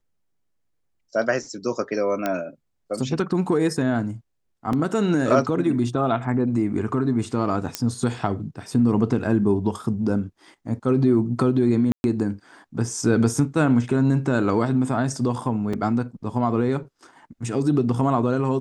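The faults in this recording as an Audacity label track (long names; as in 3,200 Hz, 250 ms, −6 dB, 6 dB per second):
2.260000	2.260000	click −10 dBFS
4.730000	4.730000	drop-out 2.9 ms
7.750000	7.750000	click −7 dBFS
11.920000	12.040000	drop-out 121 ms
15.730000	15.730000	drop-out 4.4 ms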